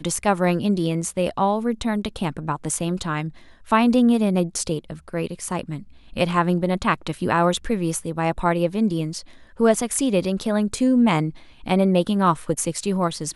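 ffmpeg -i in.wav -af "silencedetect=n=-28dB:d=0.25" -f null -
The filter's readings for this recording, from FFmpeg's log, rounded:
silence_start: 3.29
silence_end: 3.70 | silence_duration: 0.41
silence_start: 5.78
silence_end: 6.16 | silence_duration: 0.39
silence_start: 9.20
silence_end: 9.60 | silence_duration: 0.40
silence_start: 11.30
silence_end: 11.67 | silence_duration: 0.37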